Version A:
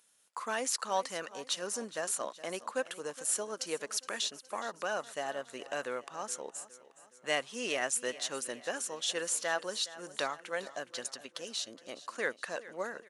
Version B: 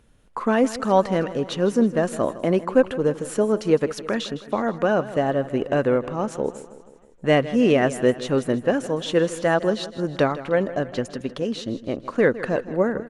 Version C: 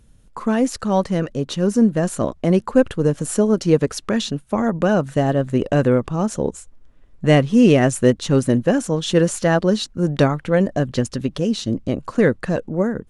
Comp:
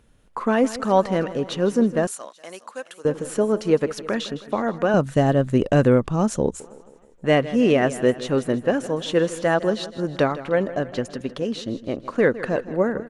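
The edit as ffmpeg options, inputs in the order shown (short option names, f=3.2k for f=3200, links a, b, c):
-filter_complex "[1:a]asplit=3[a][b][c];[a]atrim=end=2.072[d];[0:a]atrim=start=2.068:end=3.052[e];[b]atrim=start=3.048:end=4.942[f];[2:a]atrim=start=4.938:end=6.602[g];[c]atrim=start=6.598[h];[d][e]acrossfade=d=0.004:c1=hsin:c2=hsin[i];[i][f]acrossfade=d=0.004:c1=hsin:c2=hsin[j];[j][g]acrossfade=d=0.004:c1=hsin:c2=hsin[k];[k][h]acrossfade=d=0.004:c1=hsin:c2=hsin"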